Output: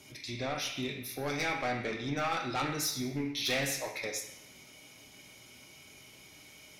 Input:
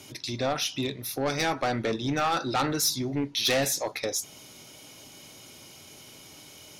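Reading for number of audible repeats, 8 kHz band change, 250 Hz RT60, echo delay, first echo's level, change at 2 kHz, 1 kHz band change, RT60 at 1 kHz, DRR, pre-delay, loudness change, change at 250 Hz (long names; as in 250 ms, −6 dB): no echo audible, −7.5 dB, 0.80 s, no echo audible, no echo audible, −2.5 dB, −6.5 dB, 0.85 s, −3.5 dB, 3 ms, −6.0 dB, −6.0 dB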